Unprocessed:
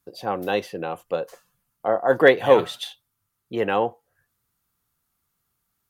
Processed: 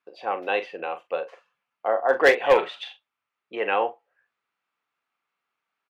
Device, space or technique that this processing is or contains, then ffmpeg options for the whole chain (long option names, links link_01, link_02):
megaphone: -filter_complex "[0:a]highpass=500,lowpass=2600,equalizer=frequency=2500:width_type=o:width=0.52:gain=8,asoftclip=type=hard:threshold=-9.5dB,asplit=2[link_01][link_02];[link_02]adelay=41,volume=-11dB[link_03];[link_01][link_03]amix=inputs=2:normalize=0"